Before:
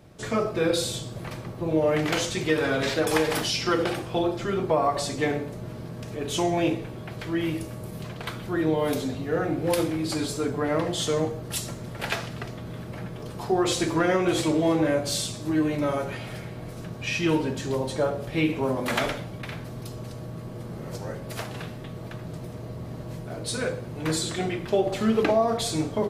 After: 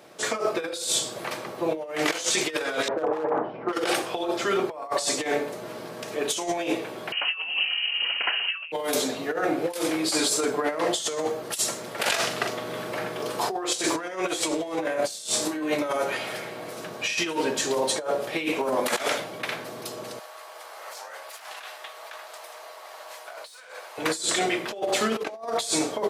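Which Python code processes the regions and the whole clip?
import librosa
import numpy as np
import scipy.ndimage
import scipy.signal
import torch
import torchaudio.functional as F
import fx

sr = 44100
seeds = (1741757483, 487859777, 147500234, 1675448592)

y = fx.chain(x, sr, fx.lowpass(hz=1100.0, slope=24),
    fx.overload_stage(gain_db=19.5), at=(2.88, 3.73))
y = fx.chain(y, sr, fx.highpass(hz=42.0, slope=12),
    fx.freq_invert(carrier_hz=3000), at=(7.12, 8.72))
y = fx.chain(y, sr, fx.doubler(ms=42.0, db=-8),
    fx.over_compress(threshold_db=-29.0, ratio=-1.0), at=(11.98, 13.85))
y = fx.chain(y, sr, fx.over_compress(threshold_db=-29.0, ratio=-1.0),
    fx.room_flutter(wall_m=5.0, rt60_s=0.23), at=(14.86, 15.74))
y = fx.chain(y, sr, fx.highpass(hz=710.0, slope=24),
    fx.tube_stage(drive_db=32.0, bias=0.6),
    fx.over_compress(threshold_db=-48.0, ratio=-1.0), at=(20.19, 23.98))
y = scipy.signal.sosfilt(scipy.signal.butter(2, 440.0, 'highpass', fs=sr, output='sos'), y)
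y = fx.dynamic_eq(y, sr, hz=7900.0, q=0.71, threshold_db=-46.0, ratio=4.0, max_db=7)
y = fx.over_compress(y, sr, threshold_db=-30.0, ratio=-0.5)
y = y * 10.0 ** (4.5 / 20.0)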